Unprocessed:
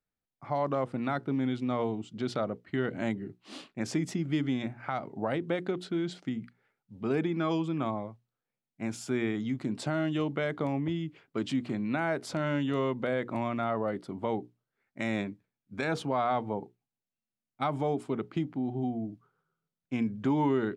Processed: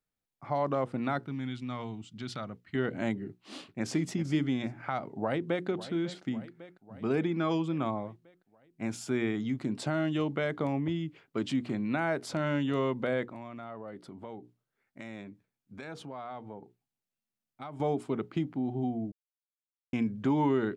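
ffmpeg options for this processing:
ffmpeg -i in.wav -filter_complex "[0:a]asettb=1/sr,asplit=3[link_01][link_02][link_03];[link_01]atrim=end=1.264[link_04];[link_02]atrim=start=1.26:end=2.75,asetpts=PTS-STARTPTS,afade=type=in:duration=0.004:curve=qsin,afade=type=out:start_time=1.486:duration=0.004:curve=qsin,equalizer=frequency=470:width=0.71:gain=-13[link_05];[link_03]atrim=start=2.746[link_06];[link_04][link_05]acrossfade=duration=0.004:curve1=hsin:curve2=qsin[link_07];[link_07][link_06]acrossfade=duration=0.004:curve1=qsin:curve2=hsin,asplit=2[link_08][link_09];[link_09]afade=type=in:start_time=3.29:duration=0.01,afade=type=out:start_time=4.05:duration=0.01,aecho=0:1:390|780:0.251189|0.0376783[link_10];[link_08][link_10]amix=inputs=2:normalize=0,asplit=2[link_11][link_12];[link_12]afade=type=in:start_time=5.16:duration=0.01,afade=type=out:start_time=5.67:duration=0.01,aecho=0:1:550|1100|1650|2200|2750|3300|3850:0.188365|0.122437|0.0795842|0.0517297|0.0336243|0.0218558|0.0142063[link_13];[link_11][link_13]amix=inputs=2:normalize=0,asettb=1/sr,asplit=3[link_14][link_15][link_16];[link_14]atrim=end=13.254[link_17];[link_15]atrim=start=13.25:end=17.8,asetpts=PTS-STARTPTS,afade=type=in:duration=0.004:curve=qsin,afade=type=out:start_time=4.546:duration=0.004:curve=qsin,acompressor=threshold=-48dB:ratio=2:attack=3.2:release=140:knee=1:detection=peak[link_18];[link_16]atrim=start=17.796[link_19];[link_17][link_18]acrossfade=duration=0.004:curve1=hsin:curve2=qsin[link_20];[link_20][link_19]acrossfade=duration=0.004:curve1=qsin:curve2=hsin,asplit=3[link_21][link_22][link_23];[link_21]atrim=end=19.12,asetpts=PTS-STARTPTS,afade=type=out:start_time=19.116:duration=0.004:curve=hsin[link_24];[link_22]atrim=start=19.12:end=19.93,asetpts=PTS-STARTPTS,volume=0[link_25];[link_23]atrim=start=19.93,asetpts=PTS-STARTPTS,afade=type=in:duration=0.004:curve=hsin[link_26];[link_24][link_25][link_26]concat=n=3:v=0:a=1" out.wav

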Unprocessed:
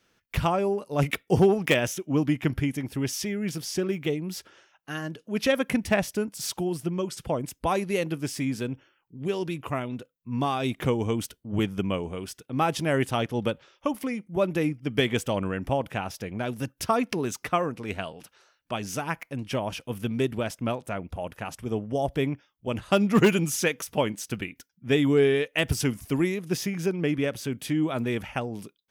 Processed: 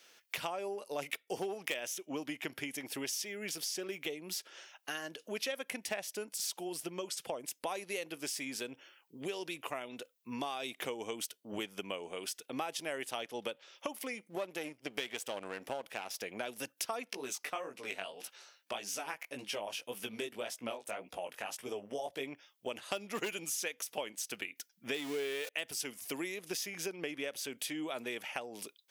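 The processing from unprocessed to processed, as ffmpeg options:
ffmpeg -i in.wav -filter_complex "[0:a]asettb=1/sr,asplit=3[link_01][link_02][link_03];[link_01]atrim=end=14.304[link_04];[link_02]atrim=start=14.3:end=16.22,asetpts=PTS-STARTPTS,afade=type=in:duration=0.004:curve=qsin,afade=type=out:start_time=1.916:duration=0.004:curve=qsin,aeval=exprs='if(lt(val(0),0),0.447*val(0),val(0))':channel_layout=same[link_05];[link_03]atrim=start=16.216[link_06];[link_04][link_05]acrossfade=duration=0.004:curve1=hsin:curve2=qsin[link_07];[link_07][link_06]acrossfade=duration=0.004:curve1=qsin:curve2=hsin,asplit=3[link_08][link_09][link_10];[link_08]afade=type=out:start_time=17.1:duration=0.02[link_11];[link_09]flanger=delay=15:depth=6:speed=1.8,afade=type=in:start_time=17.1:duration=0.02,afade=type=out:start_time=22.26:duration=0.02[link_12];[link_10]afade=type=in:start_time=22.26:duration=0.02[link_13];[link_11][link_12][link_13]amix=inputs=3:normalize=0,asettb=1/sr,asplit=3[link_14][link_15][link_16];[link_14]atrim=end=24.944[link_17];[link_15]atrim=start=24.94:end=25.49,asetpts=PTS-STARTPTS,afade=type=in:duration=0.004:curve=qsin,afade=type=out:start_time=0.546:duration=0.004:curve=qsin,aeval=exprs='val(0)+0.5*0.0422*sgn(val(0))':channel_layout=same[link_18];[link_16]atrim=start=25.486[link_19];[link_17][link_18]acrossfade=duration=0.004:curve1=hsin:curve2=qsin[link_20];[link_20][link_19]acrossfade=duration=0.004:curve1=qsin:curve2=hsin,highpass=650,equalizer=frequency=1200:width_type=o:width=1.5:gain=-8,acompressor=threshold=-49dB:ratio=4,volume=10.5dB" out.wav

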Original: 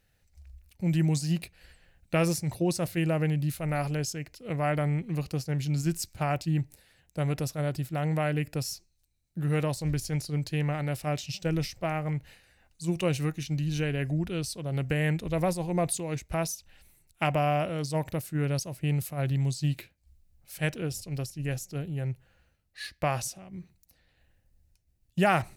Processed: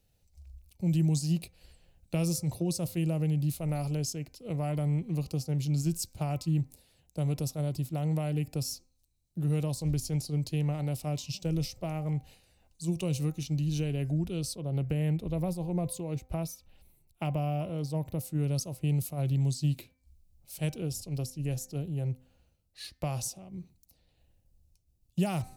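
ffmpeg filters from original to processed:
ffmpeg -i in.wav -filter_complex "[0:a]asettb=1/sr,asplit=3[link_01][link_02][link_03];[link_01]atrim=end=14.554[link_04];[link_02]atrim=start=14.55:end=18.19,asetpts=PTS-STARTPTS,afade=type=in:duration=0.004:curve=qsin,afade=type=out:start_time=3.636:duration=0.004:curve=qsin,equalizer=frequency=7200:width_type=o:width=1.7:gain=-10[link_05];[link_03]atrim=start=18.186[link_06];[link_04][link_05]acrossfade=duration=0.004:curve1=hsin:curve2=qsin[link_07];[link_07][link_06]acrossfade=duration=0.004:curve1=qsin:curve2=hsin,equalizer=frequency=1700:width_type=o:width=0.93:gain=-15,bandreject=frequency=257.2:width_type=h:width=4,bandreject=frequency=514.4:width_type=h:width=4,bandreject=frequency=771.6:width_type=h:width=4,bandreject=frequency=1028.8:width_type=h:width=4,bandreject=frequency=1286:width_type=h:width=4,bandreject=frequency=1543.2:width_type=h:width=4,bandreject=frequency=1800.4:width_type=h:width=4,bandreject=frequency=2057.6:width_type=h:width=4,bandreject=frequency=2314.8:width_type=h:width=4,acrossover=split=230|3000[link_08][link_09][link_10];[link_09]acompressor=threshold=-36dB:ratio=3[link_11];[link_08][link_11][link_10]amix=inputs=3:normalize=0" out.wav

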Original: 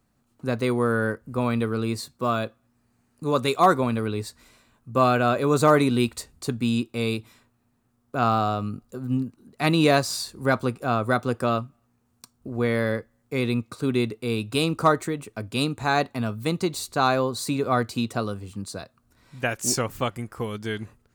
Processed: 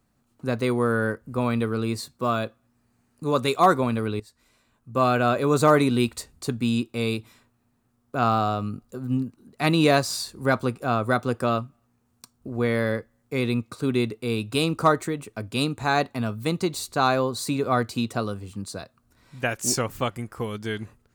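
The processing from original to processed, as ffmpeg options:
ffmpeg -i in.wav -filter_complex "[0:a]asplit=2[link_01][link_02];[link_01]atrim=end=4.2,asetpts=PTS-STARTPTS,afade=type=out:start_time=4.196:duration=0.004:curve=hsin:silence=0.141254[link_03];[link_02]atrim=start=4.2,asetpts=PTS-STARTPTS,afade=type=in:duration=1.03:silence=0.141254[link_04];[link_03][link_04]concat=n=2:v=0:a=1" out.wav

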